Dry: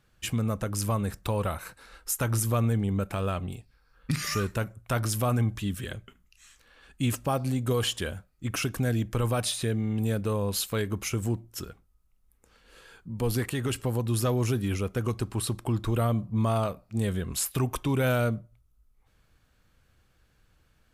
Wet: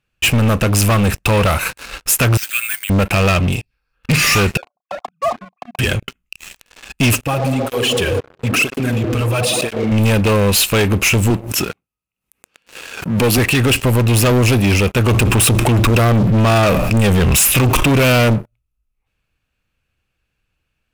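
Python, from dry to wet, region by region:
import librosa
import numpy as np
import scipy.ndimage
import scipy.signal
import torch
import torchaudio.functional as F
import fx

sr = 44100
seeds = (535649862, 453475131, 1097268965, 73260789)

y = fx.chain(x, sr, fx.steep_highpass(hz=1400.0, slope=96),
    fx.air_absorb(metres=120.0),
    fx.resample_bad(factor=4, down='filtered', up='zero_stuff'), at=(2.37, 2.9))
y = fx.chain(y, sr, fx.sine_speech(),
    fx.formant_cascade(vowel='a'),
    fx.doubler(ms=33.0, db=-13.0), at=(4.57, 5.79))
y = fx.chain(y, sr, fx.echo_wet_bandpass(ms=63, feedback_pct=82, hz=400.0, wet_db=-4.0),
    fx.level_steps(step_db=17),
    fx.flanger_cancel(hz=1.0, depth_ms=5.9), at=(7.21, 9.92))
y = fx.chain(y, sr, fx.highpass(hz=140.0, slope=12),
    fx.pre_swell(db_per_s=97.0), at=(11.3, 13.38))
y = fx.chain(y, sr, fx.peak_eq(hz=4300.0, db=-13.0, octaves=0.24),
    fx.env_flatten(amount_pct=70), at=(15.08, 18.34))
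y = fx.peak_eq(y, sr, hz=2600.0, db=13.5, octaves=0.33)
y = fx.leveller(y, sr, passes=5)
y = y * 10.0 ** (2.0 / 20.0)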